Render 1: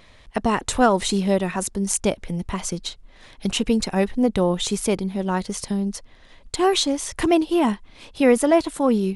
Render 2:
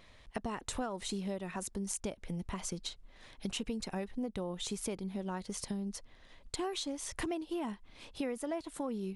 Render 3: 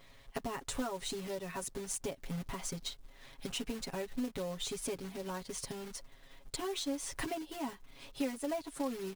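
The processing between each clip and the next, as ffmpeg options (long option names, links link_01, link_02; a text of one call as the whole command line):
ffmpeg -i in.wav -af "acompressor=threshold=-26dB:ratio=6,volume=-8.5dB" out.wav
ffmpeg -i in.wav -af "acrusher=bits=3:mode=log:mix=0:aa=0.000001,aecho=1:1:7.3:0.96,volume=-3dB" out.wav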